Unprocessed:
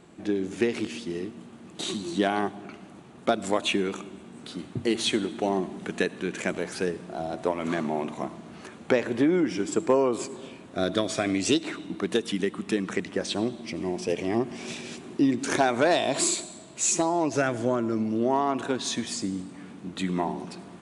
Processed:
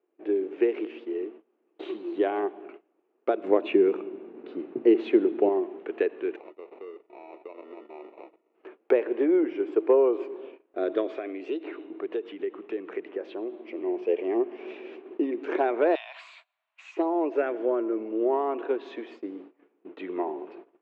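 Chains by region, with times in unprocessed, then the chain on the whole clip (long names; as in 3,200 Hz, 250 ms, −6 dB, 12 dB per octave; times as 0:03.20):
0:03.44–0:05.49: parametric band 130 Hz +15 dB 2.4 octaves + notch filter 3,200 Hz, Q 14
0:06.36–0:08.55: low-shelf EQ 490 Hz −6.5 dB + downward compressor 3 to 1, threshold −40 dBFS + sample-rate reduction 1,600 Hz
0:11.18–0:13.72: downward compressor 2 to 1, threshold −31 dBFS + one half of a high-frequency compander decoder only
0:15.95–0:16.97: Bessel high-pass filter 1,500 Hz, order 8 + multiband upward and downward compressor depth 40%
whole clip: Chebyshev band-pass filter 330–2,700 Hz, order 3; noise gate −45 dBFS, range −21 dB; parametric band 420 Hz +11.5 dB 1.2 octaves; level −7 dB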